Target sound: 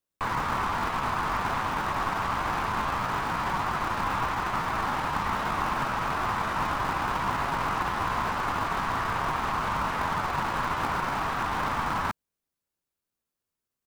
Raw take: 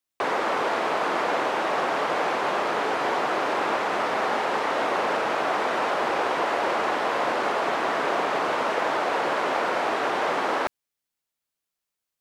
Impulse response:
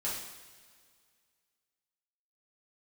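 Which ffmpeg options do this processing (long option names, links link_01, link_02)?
-filter_complex "[0:a]highpass=frequency=990:width_type=q:width=2.4,highshelf=frequency=5000:gain=5,atempo=0.88,asplit=2[link_01][link_02];[link_02]acrusher=samples=40:mix=1:aa=0.000001,volume=-7dB[link_03];[link_01][link_03]amix=inputs=2:normalize=0,volume=-7.5dB"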